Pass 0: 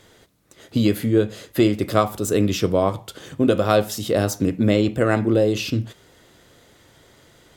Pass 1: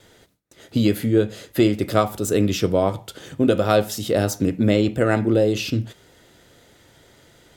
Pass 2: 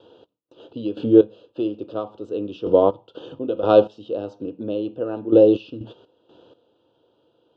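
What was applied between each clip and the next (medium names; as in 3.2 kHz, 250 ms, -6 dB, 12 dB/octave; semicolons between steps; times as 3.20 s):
gate with hold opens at -50 dBFS; band-stop 1.1 kHz, Q 10
Butterworth band-stop 2 kHz, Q 1; cabinet simulation 140–3400 Hz, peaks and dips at 170 Hz -6 dB, 320 Hz +7 dB, 490 Hz +10 dB, 950 Hz +5 dB, 1.8 kHz +7 dB, 2.8 kHz +9 dB; trance gate "x.x.x......" 62 bpm -12 dB; trim -1 dB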